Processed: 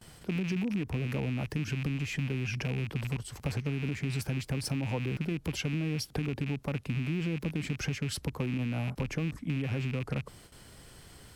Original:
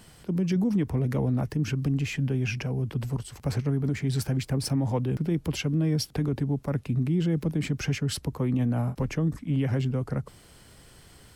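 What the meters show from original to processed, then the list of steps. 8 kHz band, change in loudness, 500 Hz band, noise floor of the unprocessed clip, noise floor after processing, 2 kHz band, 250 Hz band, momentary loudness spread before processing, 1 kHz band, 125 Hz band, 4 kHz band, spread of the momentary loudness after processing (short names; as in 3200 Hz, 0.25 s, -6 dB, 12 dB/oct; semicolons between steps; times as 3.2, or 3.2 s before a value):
-4.0 dB, -5.5 dB, -6.0 dB, -53 dBFS, -54 dBFS, +0.5 dB, -6.5 dB, 5 LU, -4.5 dB, -6.0 dB, -2.5 dB, 4 LU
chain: rattling part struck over -28 dBFS, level -25 dBFS; gate with hold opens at -42 dBFS; compressor, threshold -29 dBFS, peak gain reduction 8 dB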